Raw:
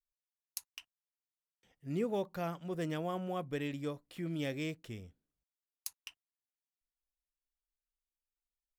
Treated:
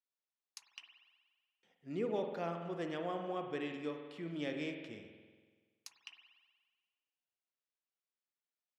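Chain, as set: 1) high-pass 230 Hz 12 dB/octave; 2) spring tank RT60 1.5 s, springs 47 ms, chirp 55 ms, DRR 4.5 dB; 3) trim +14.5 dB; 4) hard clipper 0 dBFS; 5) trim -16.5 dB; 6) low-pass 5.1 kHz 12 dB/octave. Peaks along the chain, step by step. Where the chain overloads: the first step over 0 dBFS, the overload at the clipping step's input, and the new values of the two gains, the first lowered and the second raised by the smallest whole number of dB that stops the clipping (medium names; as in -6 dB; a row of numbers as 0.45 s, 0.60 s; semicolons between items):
-18.5 dBFS, -18.5 dBFS, -4.0 dBFS, -4.0 dBFS, -20.5 dBFS, -25.0 dBFS; nothing clips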